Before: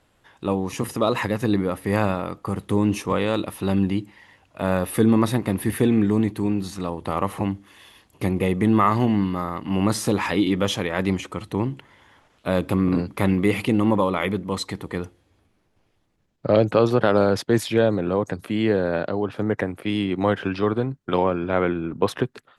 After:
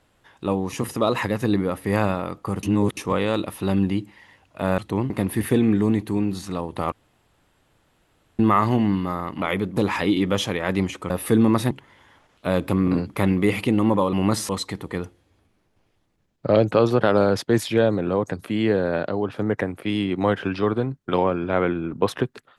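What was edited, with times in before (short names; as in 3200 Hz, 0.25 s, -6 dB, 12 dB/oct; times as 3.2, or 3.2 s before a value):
2.63–2.97 reverse
4.78–5.39 swap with 11.4–11.72
7.21–8.68 room tone
9.71–10.07 swap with 14.14–14.49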